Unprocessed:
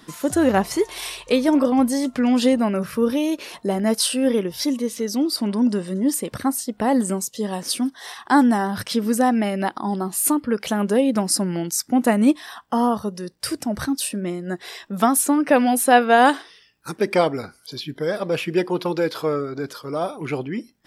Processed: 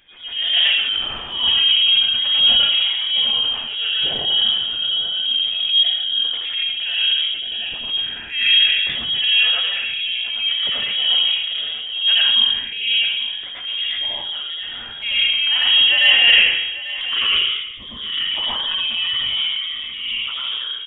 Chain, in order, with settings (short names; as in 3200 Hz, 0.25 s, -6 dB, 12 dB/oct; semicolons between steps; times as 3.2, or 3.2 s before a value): on a send: echo 0.843 s -15 dB; on the sum: plate-style reverb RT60 0.94 s, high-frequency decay 0.75×, pre-delay 75 ms, DRR -7.5 dB; inverted band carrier 3500 Hz; transient shaper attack -8 dB, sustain +4 dB; gain -7 dB